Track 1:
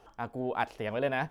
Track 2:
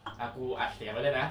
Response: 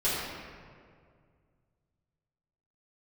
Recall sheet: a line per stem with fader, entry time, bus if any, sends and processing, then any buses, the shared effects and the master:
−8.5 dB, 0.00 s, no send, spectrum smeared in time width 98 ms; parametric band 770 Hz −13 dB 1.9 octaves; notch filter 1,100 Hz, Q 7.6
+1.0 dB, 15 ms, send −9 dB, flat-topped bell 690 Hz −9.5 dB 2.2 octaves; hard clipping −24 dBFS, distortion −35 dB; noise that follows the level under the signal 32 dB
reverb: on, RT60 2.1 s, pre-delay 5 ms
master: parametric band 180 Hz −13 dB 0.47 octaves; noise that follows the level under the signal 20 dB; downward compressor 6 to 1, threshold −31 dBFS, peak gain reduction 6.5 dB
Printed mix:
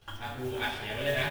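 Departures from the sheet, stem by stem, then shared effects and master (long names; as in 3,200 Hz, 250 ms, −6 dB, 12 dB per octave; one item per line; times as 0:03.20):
stem 1 −8.5 dB → −2.0 dB
master: missing downward compressor 6 to 1, threshold −31 dBFS, peak gain reduction 6.5 dB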